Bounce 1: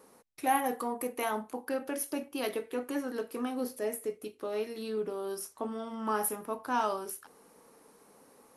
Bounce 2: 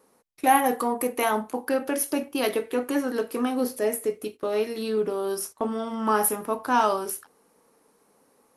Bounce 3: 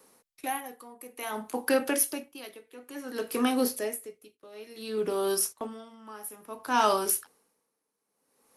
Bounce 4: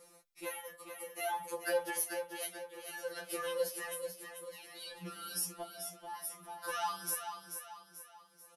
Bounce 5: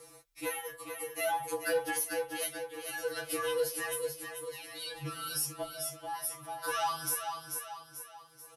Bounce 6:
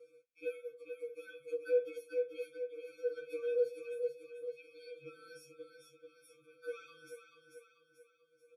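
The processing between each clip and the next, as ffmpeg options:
-af "agate=range=-12dB:threshold=-47dB:ratio=16:detection=peak,volume=8.5dB"
-filter_complex "[0:a]acrossover=split=290|660|1900[a][b][c][d];[d]acontrast=77[e];[a][b][c][e]amix=inputs=4:normalize=0,aeval=exprs='val(0)*pow(10,-23*(0.5-0.5*cos(2*PI*0.57*n/s))/20)':c=same"
-filter_complex "[0:a]acompressor=threshold=-39dB:ratio=2,asplit=2[a][b];[b]aecho=0:1:437|874|1311|1748|2185:0.422|0.181|0.078|0.0335|0.0144[c];[a][c]amix=inputs=2:normalize=0,afftfilt=real='re*2.83*eq(mod(b,8),0)':imag='im*2.83*eq(mod(b,8),0)':win_size=2048:overlap=0.75,volume=2.5dB"
-filter_complex "[0:a]asplit=2[a][b];[b]alimiter=level_in=4.5dB:limit=-24dB:level=0:latency=1:release=228,volume=-4.5dB,volume=3dB[c];[a][c]amix=inputs=2:normalize=0,afreqshift=-34,asoftclip=type=tanh:threshold=-20dB,volume=-1.5dB"
-filter_complex "[0:a]asplit=3[a][b][c];[a]bandpass=f=530:t=q:w=8,volume=0dB[d];[b]bandpass=f=1.84k:t=q:w=8,volume=-6dB[e];[c]bandpass=f=2.48k:t=q:w=8,volume=-9dB[f];[d][e][f]amix=inputs=3:normalize=0,afftfilt=real='re*eq(mod(floor(b*sr/1024/530),2),0)':imag='im*eq(mod(floor(b*sr/1024/530),2),0)':win_size=1024:overlap=0.75,volume=4.5dB"

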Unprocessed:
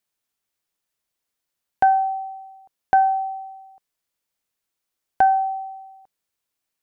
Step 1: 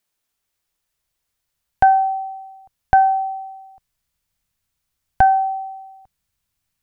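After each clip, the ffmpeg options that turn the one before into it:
-af "asubboost=boost=10:cutoff=120,volume=4.5dB"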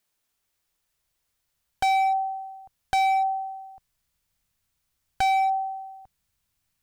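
-af "volume=20dB,asoftclip=hard,volume=-20dB"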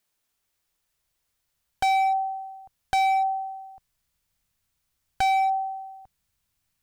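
-af anull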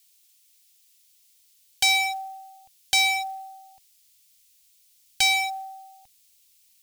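-af "aexciter=amount=10.3:drive=6.2:freq=2.1k,acrusher=bits=6:mode=log:mix=0:aa=0.000001,volume=-8dB"

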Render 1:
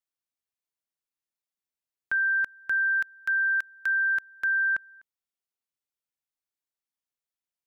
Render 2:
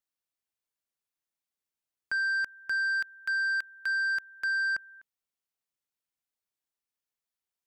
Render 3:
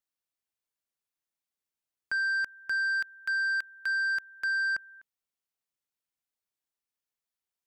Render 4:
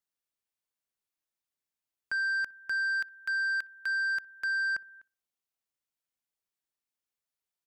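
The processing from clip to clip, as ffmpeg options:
-af "asoftclip=type=tanh:threshold=-25.5dB"
-af anull
-filter_complex "[0:a]asplit=2[a][b];[b]adelay=61,lowpass=f=1k:p=1,volume=-22dB,asplit=2[c][d];[d]adelay=61,lowpass=f=1k:p=1,volume=0.51,asplit=2[e][f];[f]adelay=61,lowpass=f=1k:p=1,volume=0.51,asplit=2[g][h];[h]adelay=61,lowpass=f=1k:p=1,volume=0.51[i];[a][c][e][g][i]amix=inputs=5:normalize=0,volume=-1.5dB"

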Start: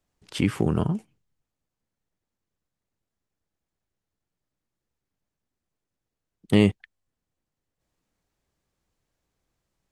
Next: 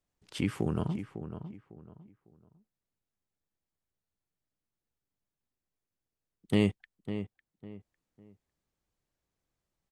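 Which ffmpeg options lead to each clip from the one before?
-filter_complex "[0:a]asplit=2[a][b];[b]adelay=552,lowpass=f=2k:p=1,volume=-10dB,asplit=2[c][d];[d]adelay=552,lowpass=f=2k:p=1,volume=0.29,asplit=2[e][f];[f]adelay=552,lowpass=f=2k:p=1,volume=0.29[g];[a][c][e][g]amix=inputs=4:normalize=0,volume=-7.5dB"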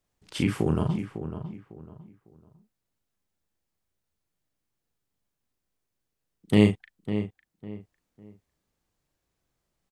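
-filter_complex "[0:a]asplit=2[a][b];[b]adelay=38,volume=-6dB[c];[a][c]amix=inputs=2:normalize=0,volume=5dB"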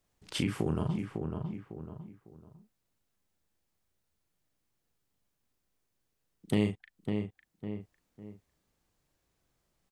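-af "acompressor=threshold=-35dB:ratio=2,volume=2dB"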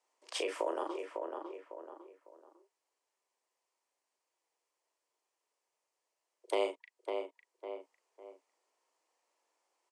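-af "highpass=300,equalizer=f=790:t=q:w=4:g=7,equalizer=f=1.3k:t=q:w=4:g=-5,equalizer=f=3.5k:t=q:w=4:g=-6,lowpass=f=9.2k:w=0.5412,lowpass=f=9.2k:w=1.3066,afreqshift=180"

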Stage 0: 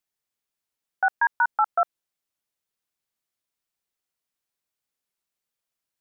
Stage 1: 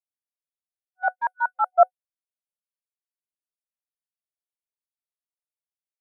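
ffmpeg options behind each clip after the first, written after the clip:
-af "agate=range=-33dB:threshold=-12dB:ratio=3:detection=peak,superequalizer=8b=3.55:11b=0.355:16b=3.55,volume=8.5dB"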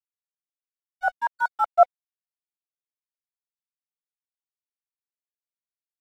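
-af "aeval=exprs='sgn(val(0))*max(abs(val(0))-0.00501,0)':c=same"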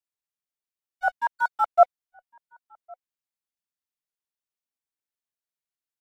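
-filter_complex "[0:a]asplit=2[a][b];[b]adelay=1108,volume=-28dB,highshelf=f=4k:g=-24.9[c];[a][c]amix=inputs=2:normalize=0"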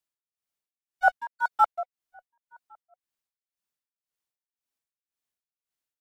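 -af "tremolo=f=1.9:d=0.95,volume=4dB"

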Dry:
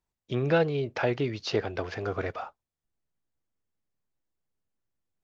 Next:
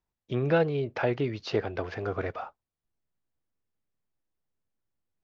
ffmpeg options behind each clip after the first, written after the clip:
-af "lowpass=f=3k:p=1"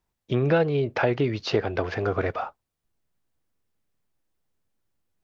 -af "acompressor=threshold=-27dB:ratio=2,volume=7dB"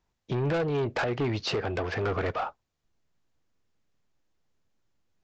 -af "alimiter=limit=-14.5dB:level=0:latency=1:release=264,aresample=16000,asoftclip=type=tanh:threshold=-26dB,aresample=44100,volume=2.5dB"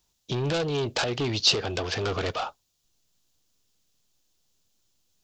-af "aexciter=amount=5.1:drive=4.5:freq=2.9k"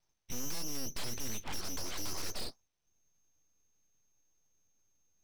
-af "lowpass=f=2.7k:t=q:w=0.5098,lowpass=f=2.7k:t=q:w=0.6013,lowpass=f=2.7k:t=q:w=0.9,lowpass=f=2.7k:t=q:w=2.563,afreqshift=-3200,aeval=exprs='(tanh(28.2*val(0)+0.05)-tanh(0.05))/28.2':c=same,aeval=exprs='abs(val(0))':c=same,volume=-1dB"

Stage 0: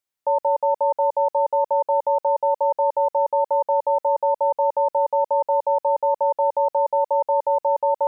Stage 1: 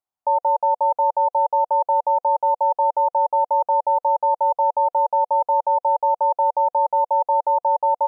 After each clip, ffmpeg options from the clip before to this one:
-af "firequalizer=gain_entry='entry(350,0);entry(500,-4);entry(720,10);entry(1800,-8)':delay=0.05:min_phase=1,volume=-3.5dB"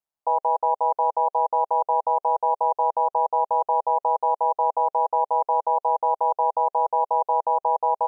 -af "aeval=exprs='val(0)*sin(2*PI*74*n/s)':c=same"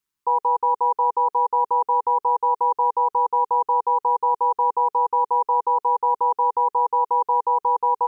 -af "asuperstop=centerf=660:order=4:qfactor=1.1,volume=9dB"

